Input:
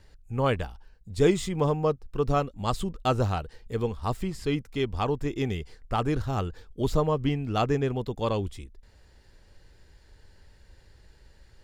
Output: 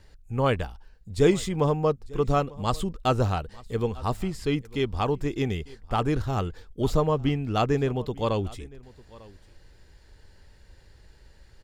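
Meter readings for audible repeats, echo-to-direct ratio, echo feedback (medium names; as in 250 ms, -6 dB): 1, -22.0 dB, no regular repeats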